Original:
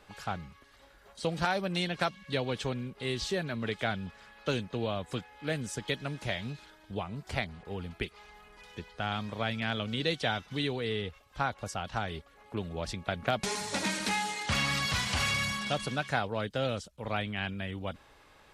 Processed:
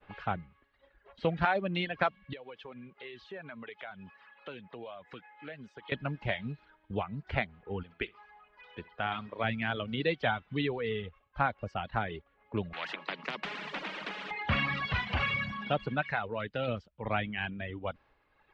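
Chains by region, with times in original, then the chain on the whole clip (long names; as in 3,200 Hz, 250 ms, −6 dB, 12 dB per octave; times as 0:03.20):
0:02.33–0:05.92: high-pass filter 460 Hz 6 dB per octave + downward compressor 3 to 1, threshold −44 dBFS
0:07.83–0:09.44: low-shelf EQ 260 Hz −8.5 dB + flutter between parallel walls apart 11.1 metres, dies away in 0.29 s
0:12.73–0:14.31: Chebyshev high-pass filter 150 Hz, order 10 + hum removal 310.8 Hz, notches 3 + every bin compressed towards the loudest bin 10 to 1
0:16.02–0:16.68: parametric band 3,500 Hz +6 dB 2.4 octaves + notch filter 3,200 Hz, Q 11 + downward compressor 1.5 to 1, threshold −36 dBFS
whole clip: downward expander −55 dBFS; low-pass filter 2,900 Hz 24 dB per octave; reverb reduction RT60 1.6 s; level +2.5 dB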